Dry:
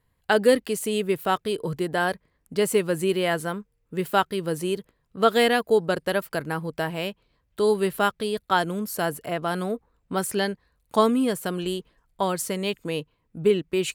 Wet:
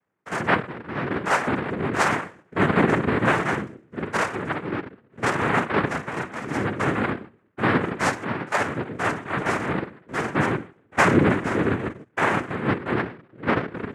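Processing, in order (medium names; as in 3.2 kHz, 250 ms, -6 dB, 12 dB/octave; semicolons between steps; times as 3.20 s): spectrogram pixelated in time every 50 ms; steep low-pass 1.5 kHz 96 dB/octave; de-hum 150.1 Hz, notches 36; reverberation RT60 0.45 s, pre-delay 3 ms, DRR -4 dB; level rider; 2.10–3.45 s: waveshaping leveller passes 1; bass shelf 490 Hz -6 dB; 10.98–12.23 s: waveshaping leveller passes 2; noise-vocoded speech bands 3; trim -7 dB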